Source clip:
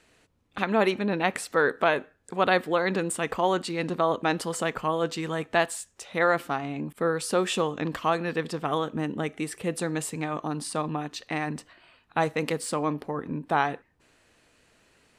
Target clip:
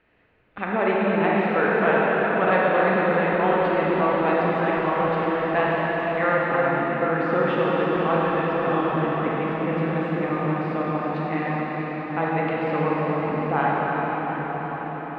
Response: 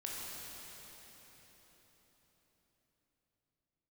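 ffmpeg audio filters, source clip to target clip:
-filter_complex "[0:a]lowpass=frequency=2600:width=0.5412,lowpass=frequency=2600:width=1.3066[link_01];[1:a]atrim=start_sample=2205,asetrate=24255,aresample=44100[link_02];[link_01][link_02]afir=irnorm=-1:irlink=0"

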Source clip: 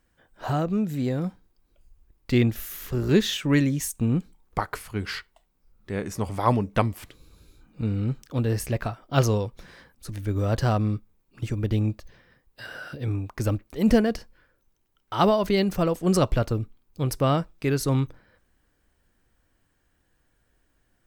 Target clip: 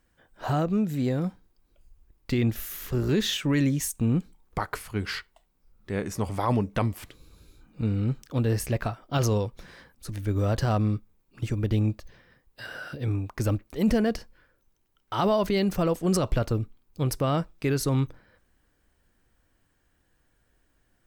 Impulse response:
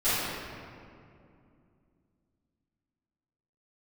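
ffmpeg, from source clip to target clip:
-af "alimiter=limit=-15dB:level=0:latency=1:release=27"

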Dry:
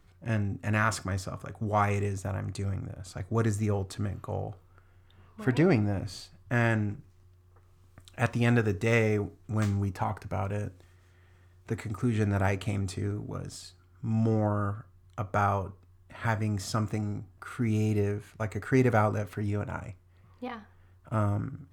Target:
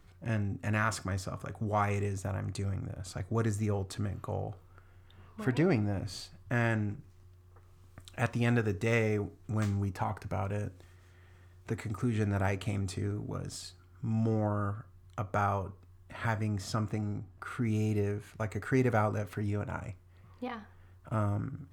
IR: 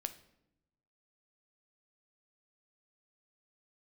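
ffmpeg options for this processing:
-filter_complex "[0:a]asettb=1/sr,asplit=3[link_01][link_02][link_03];[link_01]atrim=end=16.474[link_04];[link_02]atrim=start=16.47:end=17.65,asetpts=PTS-STARTPTS,afade=type=in:duration=0.004:curve=qsin,afade=type=out:start_time=1.176:duration=0.004:curve=qsin,highshelf=frequency=4700:gain=-6[link_05];[link_03]atrim=start=17.646[link_06];[link_04][link_05]acrossfade=duration=0.004:curve1=hsin:curve2=qsin[link_07];[link_07][link_06]acrossfade=duration=0.004:curve1=qsin:curve2=hsin,asplit=2[link_08][link_09];[link_09]acompressor=threshold=-38dB:ratio=6,volume=2dB[link_10];[link_08][link_10]amix=inputs=2:normalize=0,volume=-5.5dB"

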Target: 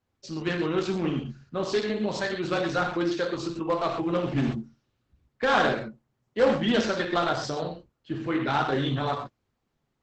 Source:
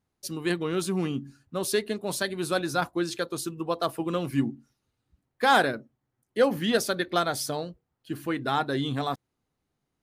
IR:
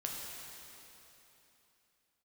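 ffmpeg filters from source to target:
-filter_complex "[0:a]asplit=3[link_01][link_02][link_03];[link_01]afade=type=out:start_time=4.47:duration=0.02[link_04];[link_02]bandreject=frequency=810:width=12,afade=type=in:start_time=4.47:duration=0.02,afade=type=out:start_time=5.59:duration=0.02[link_05];[link_03]afade=type=in:start_time=5.59:duration=0.02[link_06];[link_04][link_05][link_06]amix=inputs=3:normalize=0,asplit=2[link_07][link_08];[link_08]aeval=exprs='(mod(7.5*val(0)+1,2)-1)/7.5':channel_layout=same,volume=-9dB[link_09];[link_07][link_09]amix=inputs=2:normalize=0,lowpass=4100[link_10];[1:a]atrim=start_sample=2205,afade=type=out:start_time=0.16:duration=0.01,atrim=end_sample=7497,asetrate=36162,aresample=44100[link_11];[link_10][link_11]afir=irnorm=-1:irlink=0,adynamicequalizer=threshold=0.01:dfrequency=140:dqfactor=4.3:tfrequency=140:tqfactor=4.3:attack=5:release=100:ratio=0.375:range=1.5:mode=cutabove:tftype=bell" -ar 48000 -c:a libopus -b:a 10k

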